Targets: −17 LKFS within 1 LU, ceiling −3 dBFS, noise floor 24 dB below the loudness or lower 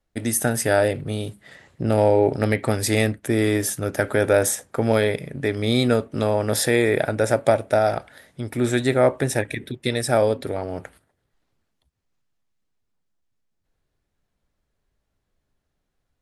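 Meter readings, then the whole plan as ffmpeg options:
integrated loudness −21.5 LKFS; sample peak −4.0 dBFS; target loudness −17.0 LKFS
→ -af "volume=4.5dB,alimiter=limit=-3dB:level=0:latency=1"

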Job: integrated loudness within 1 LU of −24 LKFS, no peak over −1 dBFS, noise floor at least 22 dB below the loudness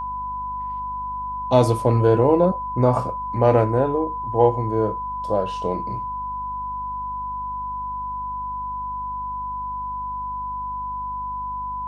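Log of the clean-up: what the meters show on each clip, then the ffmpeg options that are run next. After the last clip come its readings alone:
mains hum 50 Hz; hum harmonics up to 250 Hz; level of the hum −37 dBFS; interfering tone 1,000 Hz; level of the tone −26 dBFS; integrated loudness −23.5 LKFS; sample peak −2.5 dBFS; target loudness −24.0 LKFS
→ -af "bandreject=frequency=50:width_type=h:width=4,bandreject=frequency=100:width_type=h:width=4,bandreject=frequency=150:width_type=h:width=4,bandreject=frequency=200:width_type=h:width=4,bandreject=frequency=250:width_type=h:width=4"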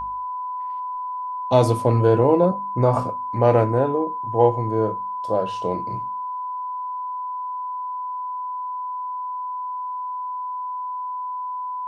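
mains hum none found; interfering tone 1,000 Hz; level of the tone −26 dBFS
→ -af "bandreject=frequency=1000:width=30"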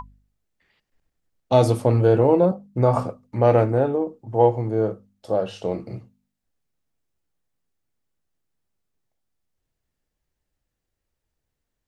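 interfering tone none found; integrated loudness −21.0 LKFS; sample peak −4.0 dBFS; target loudness −24.0 LKFS
→ -af "volume=-3dB"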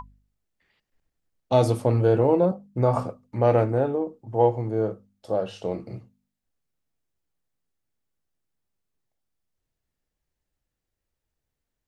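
integrated loudness −24.0 LKFS; sample peak −7.0 dBFS; background noise floor −84 dBFS

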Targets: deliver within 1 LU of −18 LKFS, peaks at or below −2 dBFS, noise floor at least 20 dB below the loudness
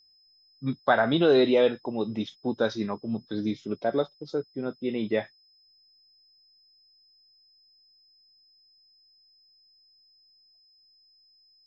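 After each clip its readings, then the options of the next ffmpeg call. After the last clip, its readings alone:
interfering tone 5,100 Hz; level of the tone −59 dBFS; integrated loudness −27.0 LKFS; sample peak −9.5 dBFS; target loudness −18.0 LKFS
→ -af "bandreject=frequency=5100:width=30"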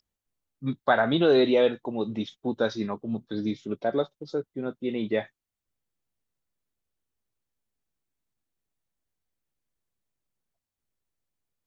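interfering tone none found; integrated loudness −27.0 LKFS; sample peak −9.5 dBFS; target loudness −18.0 LKFS
→ -af "volume=9dB,alimiter=limit=-2dB:level=0:latency=1"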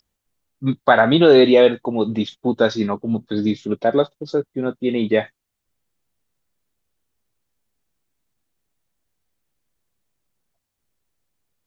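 integrated loudness −18.0 LKFS; sample peak −2.0 dBFS; background noise floor −80 dBFS

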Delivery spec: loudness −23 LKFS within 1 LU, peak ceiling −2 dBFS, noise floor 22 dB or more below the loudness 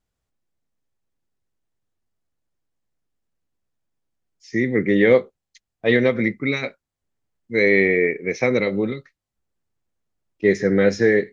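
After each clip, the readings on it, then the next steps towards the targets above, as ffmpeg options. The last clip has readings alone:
integrated loudness −19.5 LKFS; sample peak −3.5 dBFS; target loudness −23.0 LKFS
→ -af "volume=-3.5dB"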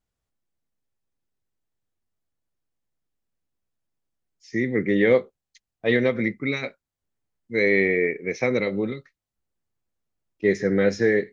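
integrated loudness −23.0 LKFS; sample peak −7.0 dBFS; background noise floor −87 dBFS

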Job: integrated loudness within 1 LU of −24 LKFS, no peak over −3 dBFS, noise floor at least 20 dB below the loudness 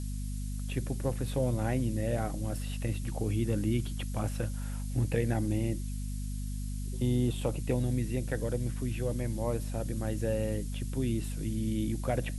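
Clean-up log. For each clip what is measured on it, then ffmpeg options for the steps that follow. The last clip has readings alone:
mains hum 50 Hz; hum harmonics up to 250 Hz; level of the hum −33 dBFS; background noise floor −35 dBFS; target noise floor −53 dBFS; integrated loudness −33.0 LKFS; sample peak −15.5 dBFS; target loudness −24.0 LKFS
→ -af "bandreject=frequency=50:width_type=h:width=6,bandreject=frequency=100:width_type=h:width=6,bandreject=frequency=150:width_type=h:width=6,bandreject=frequency=200:width_type=h:width=6,bandreject=frequency=250:width_type=h:width=6"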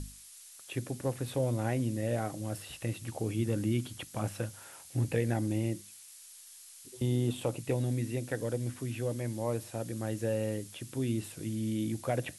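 mains hum none found; background noise floor −52 dBFS; target noise floor −54 dBFS
→ -af "afftdn=noise_reduction=6:noise_floor=-52"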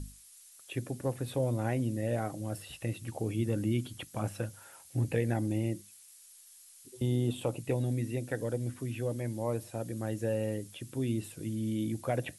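background noise floor −56 dBFS; integrated loudness −34.5 LKFS; sample peak −17.0 dBFS; target loudness −24.0 LKFS
→ -af "volume=10.5dB"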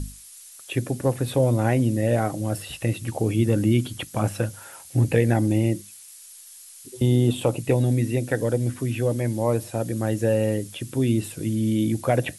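integrated loudness −24.0 LKFS; sample peak −6.5 dBFS; background noise floor −45 dBFS

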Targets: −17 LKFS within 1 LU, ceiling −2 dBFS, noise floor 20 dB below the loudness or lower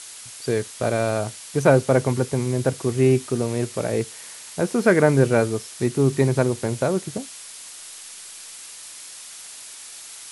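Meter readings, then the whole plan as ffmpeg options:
background noise floor −40 dBFS; target noise floor −42 dBFS; integrated loudness −22.0 LKFS; sample peak −4.0 dBFS; target loudness −17.0 LKFS
→ -af "afftdn=noise_reduction=6:noise_floor=-40"
-af "volume=5dB,alimiter=limit=-2dB:level=0:latency=1"

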